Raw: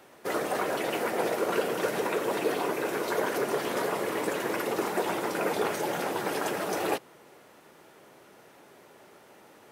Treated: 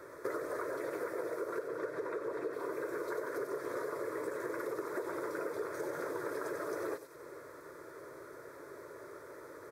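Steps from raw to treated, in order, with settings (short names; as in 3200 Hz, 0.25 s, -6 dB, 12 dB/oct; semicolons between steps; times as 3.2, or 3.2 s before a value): high shelf 3100 Hz -11 dB; fixed phaser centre 780 Hz, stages 6; echo 94 ms -16.5 dB; compressor 12:1, threshold -43 dBFS, peak gain reduction 20.5 dB; 1.59–2.53 high shelf 6400 Hz -11.5 dB; thin delay 94 ms, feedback 64%, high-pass 3400 Hz, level -7 dB; gain +8 dB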